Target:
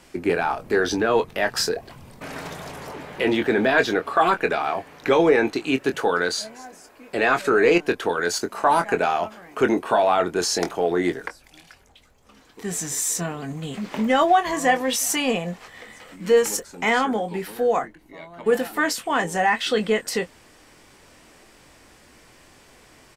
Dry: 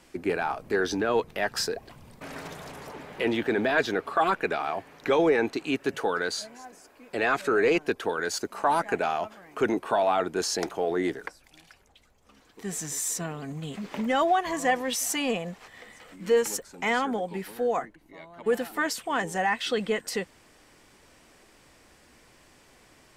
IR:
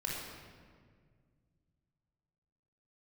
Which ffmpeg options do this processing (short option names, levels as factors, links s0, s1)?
-filter_complex "[0:a]asplit=2[s0][s1];[s1]adelay=23,volume=0.355[s2];[s0][s2]amix=inputs=2:normalize=0,volume=1.78"